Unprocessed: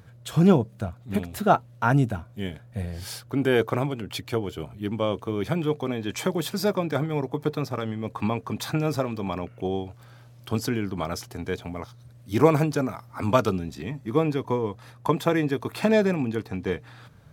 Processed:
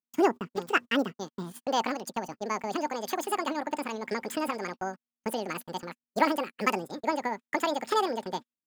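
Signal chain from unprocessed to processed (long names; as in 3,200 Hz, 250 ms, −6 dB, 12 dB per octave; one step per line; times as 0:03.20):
noise gate −35 dBFS, range −49 dB
wrong playback speed 7.5 ips tape played at 15 ips
level −5 dB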